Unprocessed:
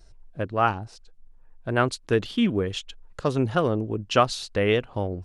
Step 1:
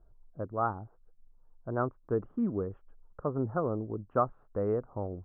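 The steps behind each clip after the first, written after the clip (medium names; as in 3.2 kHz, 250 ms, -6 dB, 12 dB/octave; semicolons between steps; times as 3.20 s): elliptic low-pass 1.3 kHz, stop band 70 dB; trim -7.5 dB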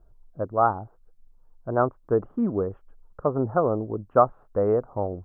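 dynamic bell 710 Hz, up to +7 dB, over -44 dBFS, Q 0.94; trim +4.5 dB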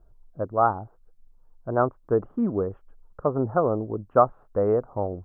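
no audible change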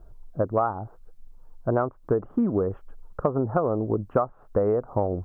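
compression 12:1, threshold -28 dBFS, peak gain reduction 17 dB; trim +8.5 dB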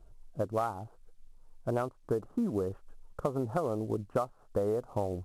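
CVSD coder 64 kbps; trim -7.5 dB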